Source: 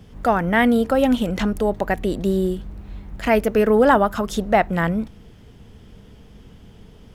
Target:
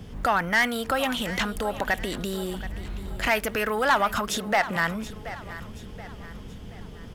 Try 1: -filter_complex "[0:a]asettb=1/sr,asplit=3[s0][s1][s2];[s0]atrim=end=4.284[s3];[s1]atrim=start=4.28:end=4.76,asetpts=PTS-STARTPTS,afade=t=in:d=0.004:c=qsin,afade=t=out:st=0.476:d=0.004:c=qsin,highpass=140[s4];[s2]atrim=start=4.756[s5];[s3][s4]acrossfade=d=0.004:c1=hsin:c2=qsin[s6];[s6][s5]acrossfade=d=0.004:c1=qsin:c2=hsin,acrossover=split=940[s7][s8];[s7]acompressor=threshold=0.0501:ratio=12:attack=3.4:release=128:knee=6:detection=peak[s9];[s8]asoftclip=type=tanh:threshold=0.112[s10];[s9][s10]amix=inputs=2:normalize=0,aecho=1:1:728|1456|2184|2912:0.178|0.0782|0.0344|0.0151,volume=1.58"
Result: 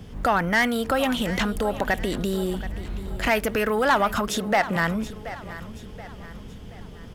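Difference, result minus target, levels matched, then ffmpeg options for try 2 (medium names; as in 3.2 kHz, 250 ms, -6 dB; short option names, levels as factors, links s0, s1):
compression: peak gain reduction -5.5 dB
-filter_complex "[0:a]asettb=1/sr,asplit=3[s0][s1][s2];[s0]atrim=end=4.284[s3];[s1]atrim=start=4.28:end=4.76,asetpts=PTS-STARTPTS,afade=t=in:d=0.004:c=qsin,afade=t=out:st=0.476:d=0.004:c=qsin,highpass=140[s4];[s2]atrim=start=4.756[s5];[s3][s4]acrossfade=d=0.004:c1=hsin:c2=qsin[s6];[s6][s5]acrossfade=d=0.004:c1=qsin:c2=hsin,acrossover=split=940[s7][s8];[s7]acompressor=threshold=0.0251:ratio=12:attack=3.4:release=128:knee=6:detection=peak[s9];[s8]asoftclip=type=tanh:threshold=0.112[s10];[s9][s10]amix=inputs=2:normalize=0,aecho=1:1:728|1456|2184|2912:0.178|0.0782|0.0344|0.0151,volume=1.58"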